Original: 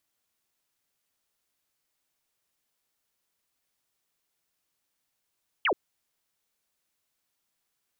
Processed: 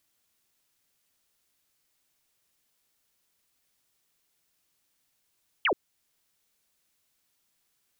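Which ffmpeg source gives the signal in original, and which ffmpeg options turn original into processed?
-f lavfi -i "aevalsrc='0.0841*clip(t/0.002,0,1)*clip((0.08-t)/0.002,0,1)*sin(2*PI*3300*0.08/log(310/3300)*(exp(log(310/3300)*t/0.08)-1))':d=0.08:s=44100"
-filter_complex "[0:a]equalizer=f=840:w=0.55:g=-3.5,asplit=2[a][b];[b]alimiter=level_in=8dB:limit=-24dB:level=0:latency=1:release=455,volume=-8dB,volume=-0.5dB[c];[a][c]amix=inputs=2:normalize=0"

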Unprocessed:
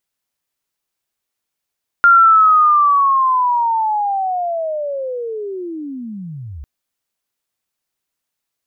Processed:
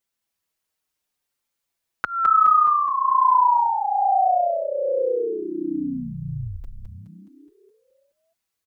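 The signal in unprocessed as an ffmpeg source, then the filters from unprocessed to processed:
-f lavfi -i "aevalsrc='pow(10,(-5-23*t/4.6)/20)*sin(2*PI*(1400*t-1338*t*t/(2*4.6)))':d=4.6:s=44100"
-filter_complex "[0:a]acompressor=threshold=-15dB:ratio=6,asplit=9[a][b][c][d][e][f][g][h][i];[b]adelay=210,afreqshift=-91,volume=-4dB[j];[c]adelay=420,afreqshift=-182,volume=-9dB[k];[d]adelay=630,afreqshift=-273,volume=-14.1dB[l];[e]adelay=840,afreqshift=-364,volume=-19.1dB[m];[f]adelay=1050,afreqshift=-455,volume=-24.1dB[n];[g]adelay=1260,afreqshift=-546,volume=-29.2dB[o];[h]adelay=1470,afreqshift=-637,volume=-34.2dB[p];[i]adelay=1680,afreqshift=-728,volume=-39.3dB[q];[a][j][k][l][m][n][o][p][q]amix=inputs=9:normalize=0,asplit=2[r][s];[s]adelay=5.4,afreqshift=-0.62[t];[r][t]amix=inputs=2:normalize=1"

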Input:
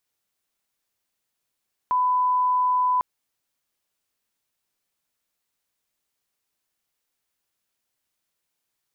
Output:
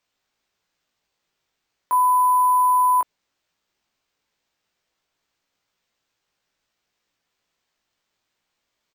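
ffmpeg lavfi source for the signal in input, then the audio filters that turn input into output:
-f lavfi -i "sine=f=1000:d=1.1:r=44100,volume=0.06dB"
-filter_complex "[0:a]highpass=270,acrusher=samples=4:mix=1:aa=0.000001,asplit=2[a][b];[b]adelay=18,volume=-3.5dB[c];[a][c]amix=inputs=2:normalize=0"

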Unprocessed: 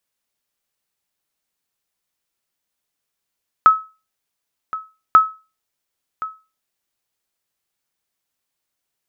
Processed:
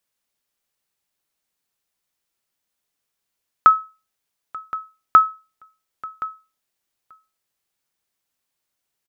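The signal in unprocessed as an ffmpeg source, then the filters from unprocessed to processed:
-f lavfi -i "aevalsrc='0.794*(sin(2*PI*1290*mod(t,1.49))*exp(-6.91*mod(t,1.49)/0.3)+0.15*sin(2*PI*1290*max(mod(t,1.49)-1.07,0))*exp(-6.91*max(mod(t,1.49)-1.07,0)/0.3))':d=2.98:s=44100"
-af "aecho=1:1:886:0.0794"

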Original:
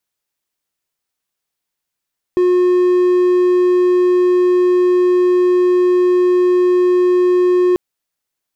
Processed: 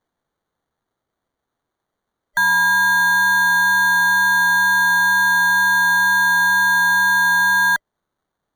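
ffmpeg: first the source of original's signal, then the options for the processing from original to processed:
-f lavfi -i "aevalsrc='0.422*(1-4*abs(mod(360*t+0.25,1)-0.5))':d=5.39:s=44100"
-filter_complex "[0:a]afftfilt=real='real(if(between(b,1,1012),(2*floor((b-1)/92)+1)*92-b,b),0)':imag='imag(if(between(b,1,1012),(2*floor((b-1)/92)+1)*92-b,b),0)*if(between(b,1,1012),-1,1)':win_size=2048:overlap=0.75,acrossover=split=390|1900[a][b][c];[c]acrusher=samples=17:mix=1:aa=0.000001[d];[a][b][d]amix=inputs=3:normalize=0"

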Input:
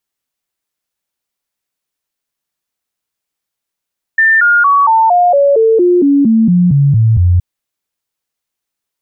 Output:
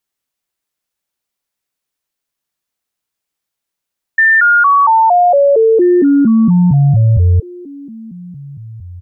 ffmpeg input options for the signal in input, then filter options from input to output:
-f lavfi -i "aevalsrc='0.531*clip(min(mod(t,0.23),0.23-mod(t,0.23))/0.005,0,1)*sin(2*PI*1790*pow(2,-floor(t/0.23)/3)*mod(t,0.23))':d=3.22:s=44100"
-filter_complex "[0:a]asplit=2[a][b];[b]adelay=1633,volume=-21dB,highshelf=f=4k:g=-36.7[c];[a][c]amix=inputs=2:normalize=0"

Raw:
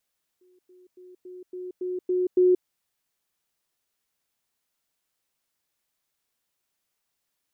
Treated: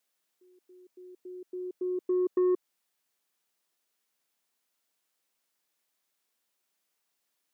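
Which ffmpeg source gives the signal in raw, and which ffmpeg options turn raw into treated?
-f lavfi -i "aevalsrc='pow(10,(-57+6*floor(t/0.28))/20)*sin(2*PI*364*t)*clip(min(mod(t,0.28),0.18-mod(t,0.28))/0.005,0,1)':d=2.24:s=44100"
-af "highpass=200,acompressor=threshold=-21dB:ratio=3,asoftclip=type=tanh:threshold=-20.5dB"

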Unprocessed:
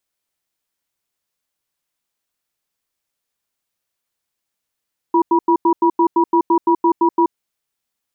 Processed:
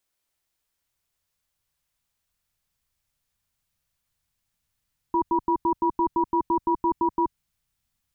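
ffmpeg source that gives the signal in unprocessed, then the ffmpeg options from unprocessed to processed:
-f lavfi -i "aevalsrc='0.224*(sin(2*PI*339*t)+sin(2*PI*966*t))*clip(min(mod(t,0.17),0.08-mod(t,0.17))/0.005,0,1)':d=2.18:s=44100"
-af "asubboost=boost=10.5:cutoff=120,alimiter=limit=-16dB:level=0:latency=1:release=17"

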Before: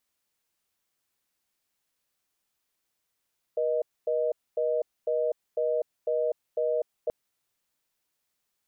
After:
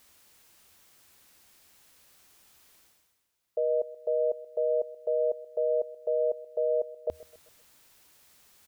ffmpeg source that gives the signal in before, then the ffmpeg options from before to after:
-f lavfi -i "aevalsrc='0.0473*(sin(2*PI*480*t)+sin(2*PI*620*t))*clip(min(mod(t,0.5),0.25-mod(t,0.5))/0.005,0,1)':d=3.53:s=44100"
-af "equalizer=f=78:w=3.6:g=7,areverse,acompressor=mode=upward:threshold=-43dB:ratio=2.5,areverse,aecho=1:1:129|258|387|516:0.112|0.0505|0.0227|0.0102"

